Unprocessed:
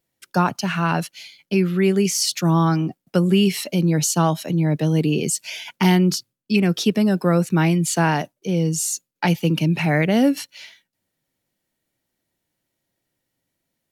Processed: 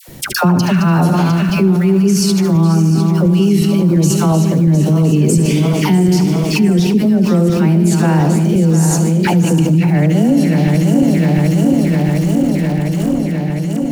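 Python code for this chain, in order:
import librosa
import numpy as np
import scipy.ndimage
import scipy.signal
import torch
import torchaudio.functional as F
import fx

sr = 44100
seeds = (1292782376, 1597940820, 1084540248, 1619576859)

p1 = fx.reverse_delay_fb(x, sr, ms=353, feedback_pct=73, wet_db=-9.0)
p2 = fx.quant_dither(p1, sr, seeds[0], bits=6, dither='none')
p3 = p1 + F.gain(torch.from_numpy(p2), -10.0).numpy()
p4 = fx.peak_eq(p3, sr, hz=2000.0, db=-2.5, octaves=3.0)
p5 = fx.quant_float(p4, sr, bits=4)
p6 = p5 + fx.echo_feedback(p5, sr, ms=74, feedback_pct=56, wet_db=-12.0, dry=0)
p7 = fx.rider(p6, sr, range_db=10, speed_s=0.5)
p8 = fx.low_shelf(p7, sr, hz=410.0, db=11.5)
p9 = fx.dispersion(p8, sr, late='lows', ms=86.0, hz=930.0)
p10 = fx.env_flatten(p9, sr, amount_pct=70)
y = F.gain(torch.from_numpy(p10), -7.5).numpy()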